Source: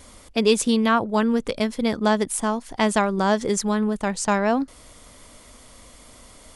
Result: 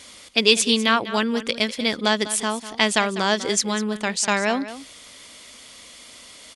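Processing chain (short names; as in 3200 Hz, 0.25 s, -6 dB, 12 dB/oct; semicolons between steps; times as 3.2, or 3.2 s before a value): weighting filter D; on a send: echo 0.198 s -14 dB; on the sum: gain -1.5 dB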